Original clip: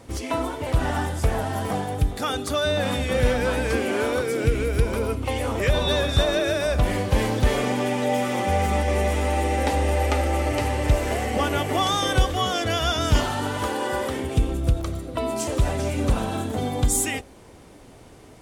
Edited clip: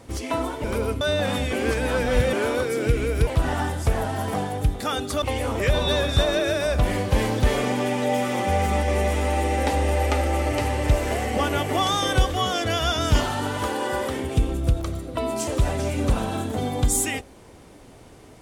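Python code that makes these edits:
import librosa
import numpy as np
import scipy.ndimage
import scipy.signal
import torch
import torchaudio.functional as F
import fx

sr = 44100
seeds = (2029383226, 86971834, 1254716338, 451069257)

y = fx.edit(x, sr, fx.swap(start_s=0.64, length_s=1.95, other_s=4.85, other_length_s=0.37),
    fx.reverse_span(start_s=3.11, length_s=0.8), tone=tone)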